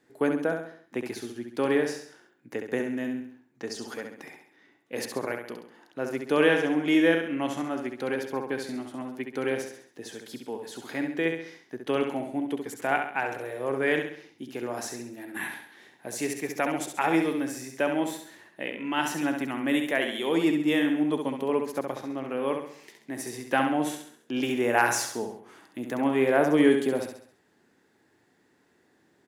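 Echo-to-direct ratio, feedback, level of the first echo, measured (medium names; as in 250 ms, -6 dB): -5.0 dB, 45%, -6.0 dB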